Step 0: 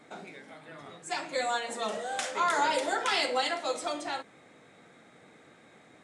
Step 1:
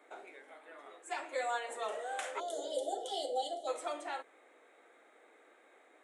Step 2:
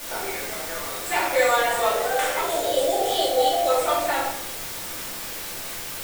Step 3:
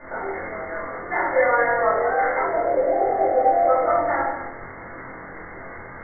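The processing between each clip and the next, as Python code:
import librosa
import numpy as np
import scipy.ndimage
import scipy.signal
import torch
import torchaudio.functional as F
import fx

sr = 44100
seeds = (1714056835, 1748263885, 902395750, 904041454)

y1 = scipy.signal.sosfilt(scipy.signal.cheby2(4, 40, 170.0, 'highpass', fs=sr, output='sos'), x)
y1 = fx.spec_box(y1, sr, start_s=2.4, length_s=1.28, low_hz=820.0, high_hz=2900.0, gain_db=-29)
y1 = fx.peak_eq(y1, sr, hz=5000.0, db=-13.0, octaves=0.83)
y1 = F.gain(torch.from_numpy(y1), -4.5).numpy()
y2 = fx.rider(y1, sr, range_db=10, speed_s=2.0)
y2 = fx.quant_dither(y2, sr, seeds[0], bits=8, dither='triangular')
y2 = fx.room_shoebox(y2, sr, seeds[1], volume_m3=240.0, walls='mixed', distance_m=2.5)
y2 = F.gain(torch.from_numpy(y2), 8.0).numpy()
y3 = fx.brickwall_lowpass(y2, sr, high_hz=2200.0)
y3 = fx.doubler(y3, sr, ms=23.0, db=-2)
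y3 = y3 + 10.0 ** (-11.5 / 20.0) * np.pad(y3, (int(195 * sr / 1000.0), 0))[:len(y3)]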